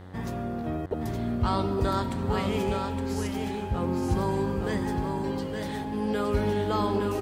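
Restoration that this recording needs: de-hum 92 Hz, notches 22; inverse comb 866 ms -5 dB

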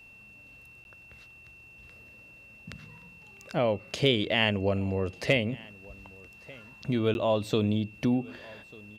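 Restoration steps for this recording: clip repair -10 dBFS; band-stop 2.7 kHz, Q 30; interpolate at 0.84/7.14 s, 11 ms; inverse comb 1193 ms -23.5 dB

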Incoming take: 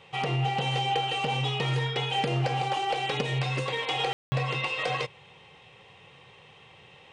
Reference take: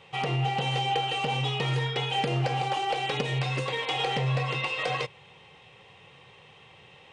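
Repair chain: room tone fill 4.13–4.32 s

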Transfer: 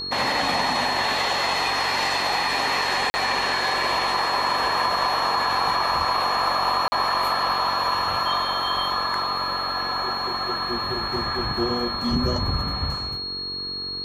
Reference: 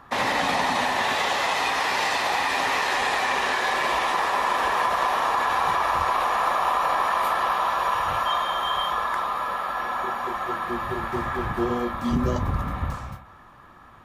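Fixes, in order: de-hum 46.3 Hz, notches 10; band-stop 4.3 kHz, Q 30; interpolate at 3.10/6.88 s, 40 ms

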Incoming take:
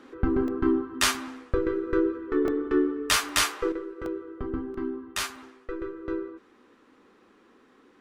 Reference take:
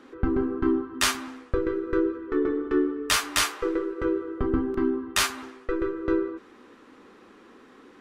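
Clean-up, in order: interpolate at 0.48/2.48/3.29/4.06/5.36 s, 1.5 ms; gain correction +7 dB, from 3.72 s

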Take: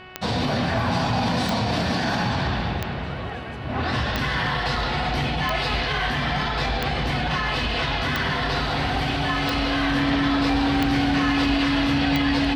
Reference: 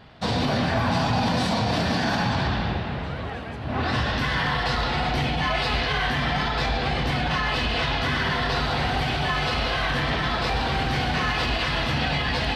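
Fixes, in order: de-click; de-hum 370.2 Hz, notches 8; band-stop 280 Hz, Q 30; inverse comb 460 ms -16 dB

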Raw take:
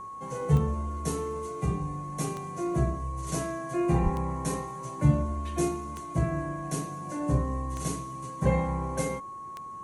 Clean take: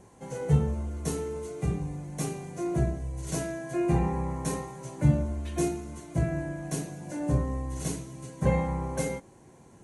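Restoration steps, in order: de-click; band-stop 1.1 kHz, Q 30; 4.03–4.15 s: high-pass 140 Hz 24 dB/octave

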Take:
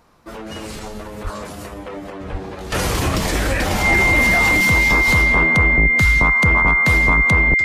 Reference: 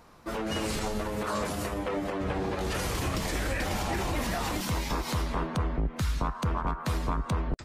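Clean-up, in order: band-stop 2.1 kHz, Q 30; de-plosive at 1.23/2.31/3.89/5.06/6.01 s; trim 0 dB, from 2.72 s -11 dB

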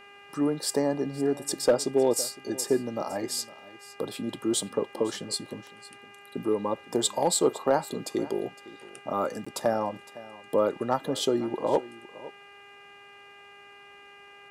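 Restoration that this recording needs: clip repair -13.5 dBFS; de-hum 403.1 Hz, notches 7; interpolate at 9.45 s, 15 ms; inverse comb 510 ms -18.5 dB

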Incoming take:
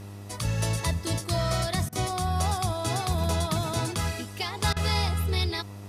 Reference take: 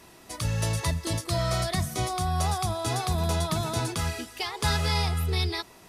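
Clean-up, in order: de-hum 100.5 Hz, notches 14; interpolate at 1.89/4.73 s, 34 ms

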